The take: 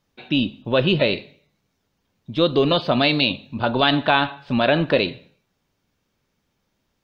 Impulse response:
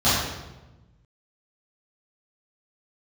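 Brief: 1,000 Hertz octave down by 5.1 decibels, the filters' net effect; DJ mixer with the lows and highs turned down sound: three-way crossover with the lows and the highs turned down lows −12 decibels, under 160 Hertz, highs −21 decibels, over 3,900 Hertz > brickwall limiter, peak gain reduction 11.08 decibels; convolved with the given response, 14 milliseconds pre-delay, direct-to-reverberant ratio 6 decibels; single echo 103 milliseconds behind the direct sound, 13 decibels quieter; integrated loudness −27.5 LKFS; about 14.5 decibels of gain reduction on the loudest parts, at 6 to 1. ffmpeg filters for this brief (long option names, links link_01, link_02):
-filter_complex "[0:a]equalizer=frequency=1000:width_type=o:gain=-7.5,acompressor=threshold=-31dB:ratio=6,aecho=1:1:103:0.224,asplit=2[link_01][link_02];[1:a]atrim=start_sample=2205,adelay=14[link_03];[link_02][link_03]afir=irnorm=-1:irlink=0,volume=-25.5dB[link_04];[link_01][link_04]amix=inputs=2:normalize=0,acrossover=split=160 3900:gain=0.251 1 0.0891[link_05][link_06][link_07];[link_05][link_06][link_07]amix=inputs=3:normalize=0,volume=12dB,alimiter=limit=-17.5dB:level=0:latency=1"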